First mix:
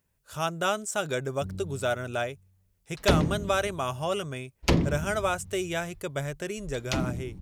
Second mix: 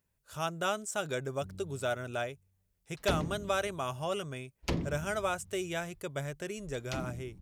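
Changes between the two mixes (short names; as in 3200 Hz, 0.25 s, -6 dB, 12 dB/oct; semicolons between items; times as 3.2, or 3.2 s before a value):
speech -5.0 dB; background -10.0 dB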